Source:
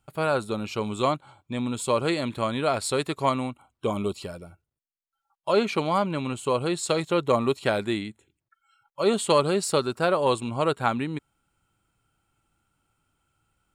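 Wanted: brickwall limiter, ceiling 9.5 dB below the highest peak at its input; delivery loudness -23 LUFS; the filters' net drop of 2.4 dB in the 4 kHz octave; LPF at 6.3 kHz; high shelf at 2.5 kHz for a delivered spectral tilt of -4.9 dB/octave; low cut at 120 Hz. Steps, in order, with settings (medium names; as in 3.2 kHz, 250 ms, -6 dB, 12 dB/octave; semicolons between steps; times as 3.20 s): high-pass 120 Hz; low-pass 6.3 kHz; treble shelf 2.5 kHz +5 dB; peaking EQ 4 kHz -6.5 dB; trim +6 dB; peak limiter -10.5 dBFS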